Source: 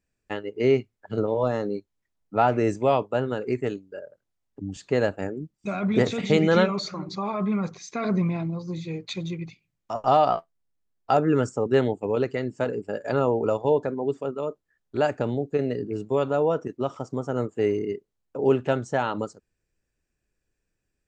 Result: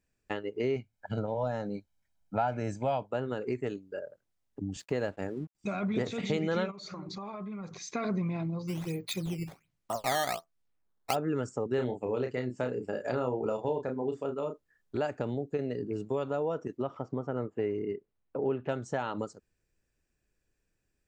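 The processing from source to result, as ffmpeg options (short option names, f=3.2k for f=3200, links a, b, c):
-filter_complex "[0:a]asettb=1/sr,asplit=3[a][b][c];[a]atrim=end=0.764[d];[b]atrim=start=0.76:end=3.11,asetpts=PTS-STARTPTS,afade=t=in:d=0.004:c=qsin,afade=t=out:st=2.346:d=0.004:c=qsin,aecho=1:1:1.3:0.65,atrim=end_sample=103635[e];[c]atrim=start=3.106[f];[d][e]acrossfade=d=0.004:c1=hsin:c2=qsin[g];[g][f]acrossfade=d=0.004:c1=qsin:c2=hsin,asettb=1/sr,asplit=3[h][i][j];[h]atrim=end=4.794[k];[i]atrim=start=4.79:end=5.55,asetpts=PTS-STARTPTS,afade=t=in:d=0.004:c=qsin,afade=t=out:st=0.756:d=0.004:c=qsin,aeval=exprs='sgn(val(0))*max(abs(val(0))-0.0015,0)':c=same[l];[j]atrim=start=5.546[m];[k][l]acrossfade=d=0.004:c1=hsin:c2=qsin[n];[n][m]acrossfade=d=0.004:c1=qsin:c2=hsin,asplit=3[o][p][q];[o]afade=t=out:st=6.7:d=0.02[r];[p]acompressor=threshold=-37dB:ratio=8:attack=3.2:release=140:knee=1:detection=peak,afade=t=in:st=6.7:d=0.02,afade=t=out:st=7.93:d=0.02[s];[q]afade=t=in:st=7.93:d=0.02[t];[r][s][t]amix=inputs=3:normalize=0,asplit=3[u][v][w];[u]afade=t=out:st=8.67:d=0.02[x];[v]acrusher=samples=10:mix=1:aa=0.000001:lfo=1:lforange=16:lforate=1.3,afade=t=in:st=8.67:d=0.02,afade=t=out:st=11.14:d=0.02[y];[w]afade=t=in:st=11.14:d=0.02[z];[x][y][z]amix=inputs=3:normalize=0,asettb=1/sr,asplit=3[aa][ab][ac];[aa]atrim=end=11.754[ad];[ab]atrim=start=11.75:end=14.97,asetpts=PTS-STARTPTS,afade=t=in:d=0.004:c=qsin,afade=t=out:st=3.216:d=0.004:c=qsin,asplit=2[ae][af];[af]adelay=32,volume=-5.5dB[ag];[ae][ag]amix=inputs=2:normalize=0,atrim=end_sample=142002[ah];[ac]atrim=start=14.966[ai];[ad][ah]acrossfade=d=0.004:c1=hsin:c2=qsin[aj];[aj][ai]acrossfade=d=0.004:c1=qsin:c2=hsin,asettb=1/sr,asplit=3[ak][al][am];[ak]atrim=end=16.824[an];[al]atrim=start=16.82:end=18.69,asetpts=PTS-STARTPTS,afade=t=in:d=0.004:c=qsin,afade=t=out:st=1.866:d=0.004:c=qsin,lowpass=2.7k[ao];[am]atrim=start=18.686[ap];[an][ao]acrossfade=d=0.004:c1=hsin:c2=qsin[aq];[aq][ap]acrossfade=d=0.004:c1=qsin:c2=hsin,acompressor=threshold=-32dB:ratio=2.5"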